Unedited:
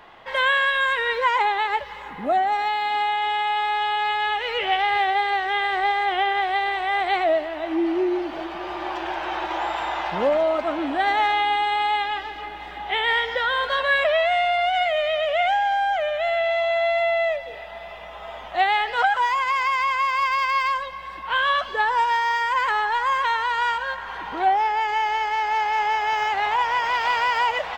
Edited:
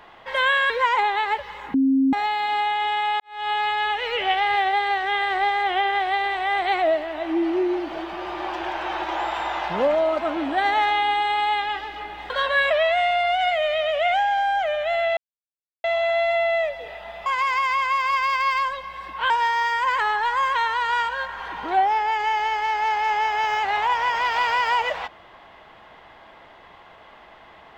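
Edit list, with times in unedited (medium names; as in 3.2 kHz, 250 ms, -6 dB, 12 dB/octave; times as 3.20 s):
0.70–1.12 s: delete
2.16–2.55 s: bleep 268 Hz -15 dBFS
3.62–3.92 s: fade in quadratic
12.72–13.64 s: delete
16.51 s: insert silence 0.67 s
17.93–19.35 s: delete
21.39–21.99 s: delete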